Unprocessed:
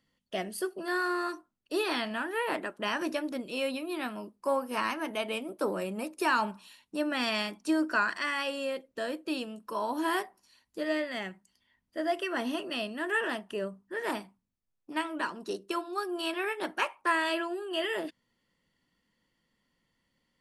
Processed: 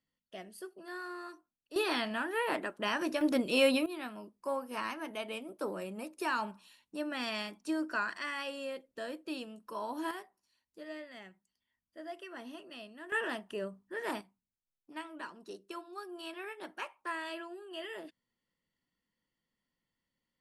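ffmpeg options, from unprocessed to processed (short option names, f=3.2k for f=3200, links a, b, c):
-af "asetnsamples=n=441:p=0,asendcmd='1.76 volume volume -1.5dB;3.21 volume volume 6dB;3.86 volume volume -6.5dB;10.11 volume volume -14dB;13.12 volume volume -4dB;14.21 volume volume -11dB',volume=-12.5dB"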